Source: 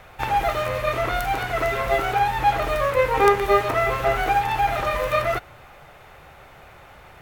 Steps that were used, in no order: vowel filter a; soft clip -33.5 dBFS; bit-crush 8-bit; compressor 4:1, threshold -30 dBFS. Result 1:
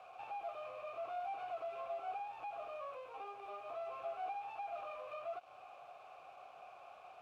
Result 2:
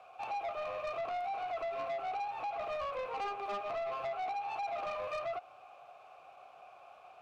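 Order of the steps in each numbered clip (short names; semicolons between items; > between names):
compressor > soft clip > bit-crush > vowel filter; bit-crush > vowel filter > compressor > soft clip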